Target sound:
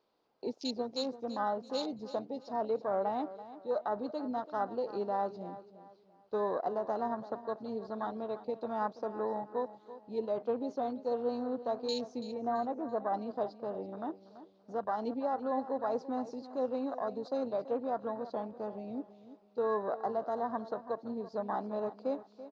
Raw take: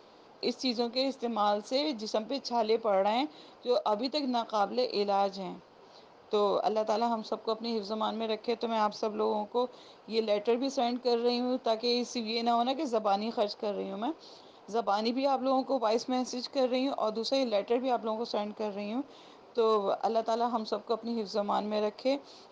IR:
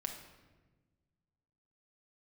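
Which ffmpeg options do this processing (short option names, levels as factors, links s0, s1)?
-filter_complex "[0:a]asettb=1/sr,asplit=3[s0][s1][s2];[s0]atrim=end=12.314[s3];[s1]atrim=start=12.31:end=13.14,asetpts=PTS-STARTPTS,afade=t=in:d=0.004:c=qsin,afade=t=out:st=0.826:d=0.004:c=qsin,lowpass=1700[s4];[s2]atrim=start=13.136[s5];[s3][s4]acrossfade=d=0.004:c1=hsin:c2=qsin[s6];[s6][s5]acrossfade=d=0.004:c1=qsin:c2=hsin,afwtdn=0.0178,aecho=1:1:334|668|1002:0.188|0.064|0.0218,volume=0.562"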